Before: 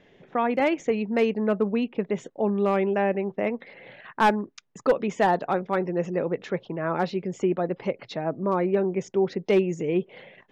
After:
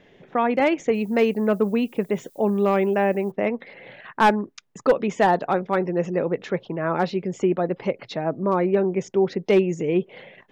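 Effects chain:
0:00.93–0:03.30: background noise violet −60 dBFS
level +3 dB

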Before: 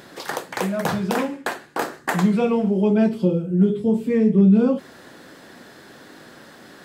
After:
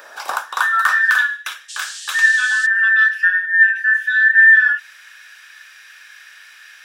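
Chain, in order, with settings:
frequency inversion band by band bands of 2,000 Hz
high-pass filter sweep 630 Hz → 2,200 Hz, 0:00.06–0:01.42
0:01.68–0:02.65: noise in a band 2,900–8,500 Hz −35 dBFS
level +2 dB

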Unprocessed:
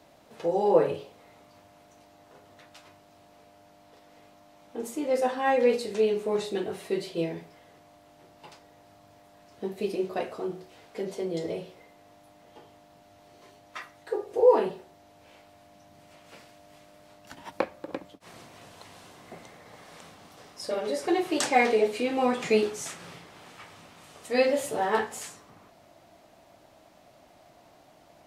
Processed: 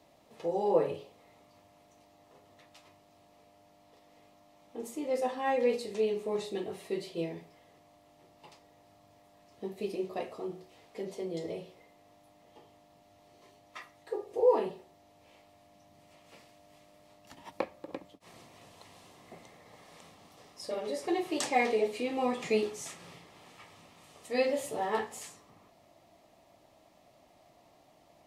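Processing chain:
notch filter 1,500 Hz, Q 5.1
level −5.5 dB

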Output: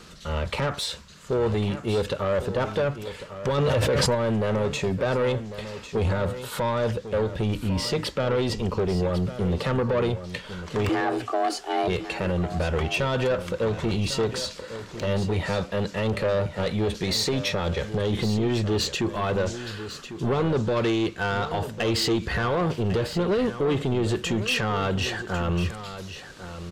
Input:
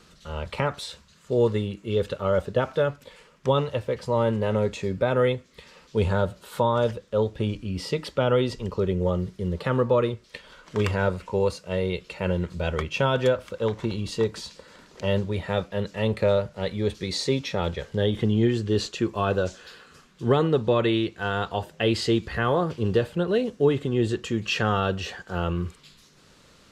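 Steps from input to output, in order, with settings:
brickwall limiter −19 dBFS, peak gain reduction 9.5 dB
soft clipping −26.5 dBFS, distortion −12 dB
0:10.89–0:11.88: frequency shifter +230 Hz
single-tap delay 1,099 ms −12 dB
0:03.58–0:04.15: envelope flattener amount 100%
level +7.5 dB

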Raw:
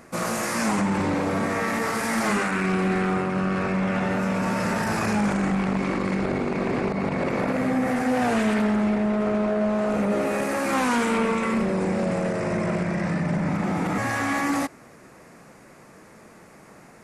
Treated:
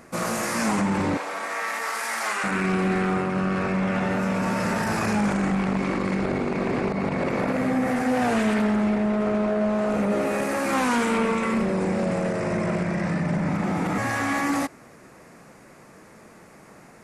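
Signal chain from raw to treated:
0:01.17–0:02.44: high-pass filter 780 Hz 12 dB per octave

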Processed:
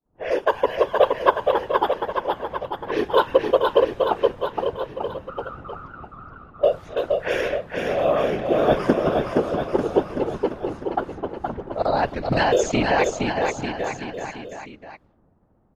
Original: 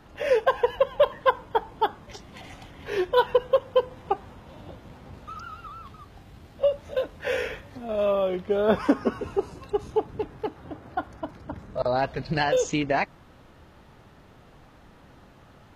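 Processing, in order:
automatic gain control gain up to 4.5 dB
downward expander −37 dBFS
random phases in short frames
low-pass that shuts in the quiet parts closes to 740 Hz, open at −18.5 dBFS
on a send: bouncing-ball delay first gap 470 ms, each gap 0.9×, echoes 5
on the sum: level −1.5 dB

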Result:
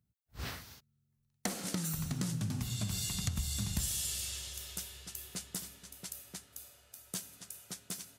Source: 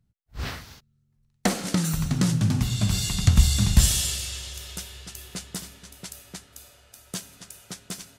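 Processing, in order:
high-pass filter 59 Hz
high-shelf EQ 9,100 Hz +11 dB
downward compressor 4 to 1, threshold −24 dBFS, peak gain reduction 10 dB
level −8.5 dB

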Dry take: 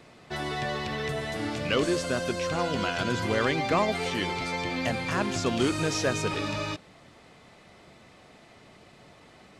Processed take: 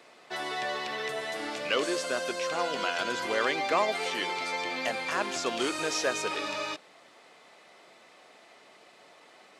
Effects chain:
high-pass filter 440 Hz 12 dB per octave

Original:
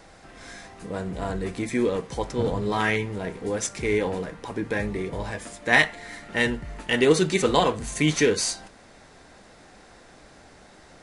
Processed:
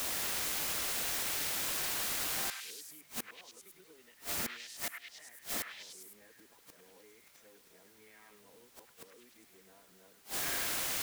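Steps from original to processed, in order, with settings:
played backwards from end to start
high-pass filter 52 Hz 6 dB per octave
three-way crossover with the lows and the highs turned down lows −15 dB, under 210 Hz, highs −13 dB, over 4,200 Hz
mains-hum notches 50/100/150 Hz
downward compressor 5 to 1, threshold −30 dBFS, peak gain reduction 15 dB
bit-depth reduction 6 bits, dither triangular
gate with flip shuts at −30 dBFS, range −29 dB
on a send: echo through a band-pass that steps 102 ms, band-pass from 1,700 Hz, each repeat 0.7 octaves, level −1.5 dB

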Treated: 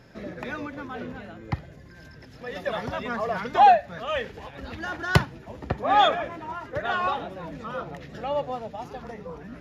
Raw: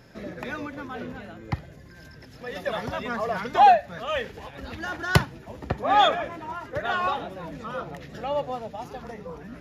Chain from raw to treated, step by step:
high-shelf EQ 8,100 Hz −8 dB

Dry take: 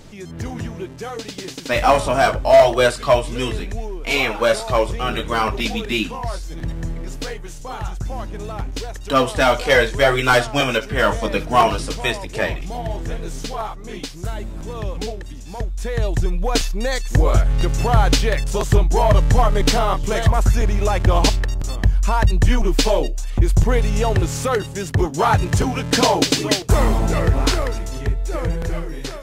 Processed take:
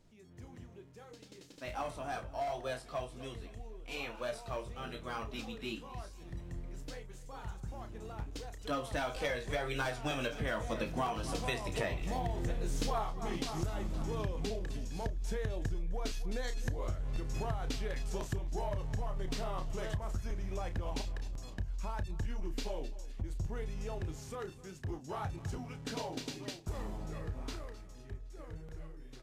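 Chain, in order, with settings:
source passing by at 0:12.99, 16 m/s, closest 1.4 metres
low-shelf EQ 420 Hz +3.5 dB
double-tracking delay 32 ms −10 dB
repeating echo 258 ms, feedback 47%, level −19 dB
downward compressor 12 to 1, threshold −49 dBFS, peak gain reduction 28.5 dB
level +17.5 dB

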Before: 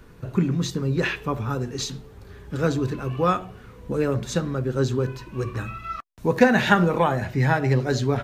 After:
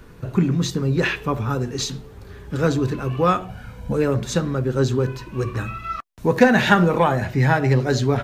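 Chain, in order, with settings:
0:03.49–0:03.93: comb filter 1.3 ms, depth 89%
in parallel at −8.5 dB: soft clipping −17 dBFS, distortion −11 dB
on the sum: level +1 dB

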